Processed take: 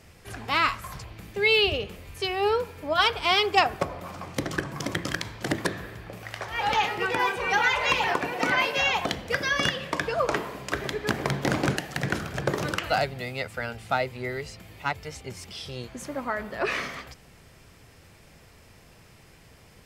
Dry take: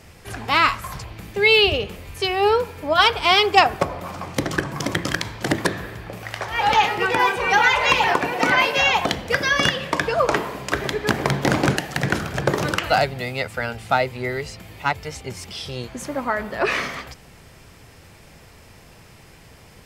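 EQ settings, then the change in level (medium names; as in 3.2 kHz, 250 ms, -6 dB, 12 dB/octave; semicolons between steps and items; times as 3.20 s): peaking EQ 880 Hz -2 dB 0.36 oct; -6.0 dB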